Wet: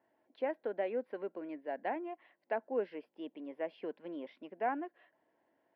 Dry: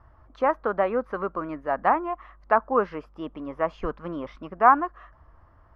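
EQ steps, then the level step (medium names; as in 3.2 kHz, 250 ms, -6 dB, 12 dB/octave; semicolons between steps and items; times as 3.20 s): dynamic bell 990 Hz, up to -5 dB, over -33 dBFS, Q 2.3; high-pass 260 Hz 24 dB/octave; static phaser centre 2.9 kHz, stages 4; -7.5 dB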